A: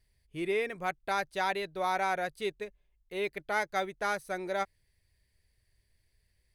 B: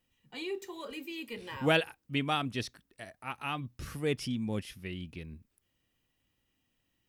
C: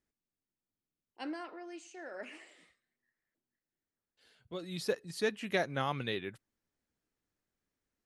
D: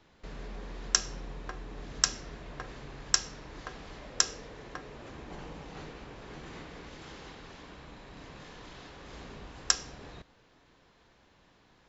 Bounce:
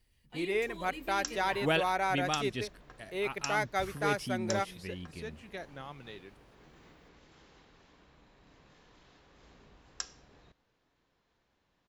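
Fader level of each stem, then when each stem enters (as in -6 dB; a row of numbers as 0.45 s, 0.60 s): -0.5 dB, -2.5 dB, -11.5 dB, -13.0 dB; 0.00 s, 0.00 s, 0.00 s, 0.30 s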